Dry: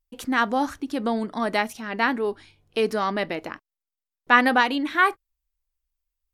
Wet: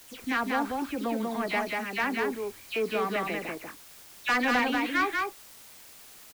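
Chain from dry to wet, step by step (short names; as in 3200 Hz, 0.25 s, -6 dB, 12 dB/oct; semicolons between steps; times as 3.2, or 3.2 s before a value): spectral delay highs early, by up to 0.122 s; LPF 3100 Hz 6 dB/oct; bell 2400 Hz +10 dB 0.42 oct; in parallel at -8 dB: requantised 6-bit, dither triangular; on the sum: soft clip -12 dBFS, distortion -13 dB; on a send: echo 0.191 s -3 dB; on the sum: gain -8 dB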